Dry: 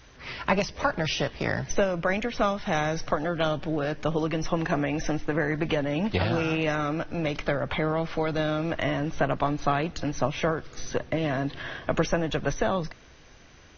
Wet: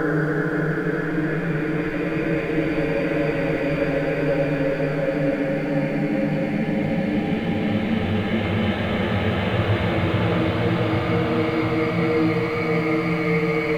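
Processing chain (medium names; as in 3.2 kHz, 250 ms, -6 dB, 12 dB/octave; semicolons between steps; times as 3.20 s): frequency axis rescaled in octaves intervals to 92%; crossover distortion -51.5 dBFS; Paulstretch 13×, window 0.50 s, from 5.47 s; trim +6.5 dB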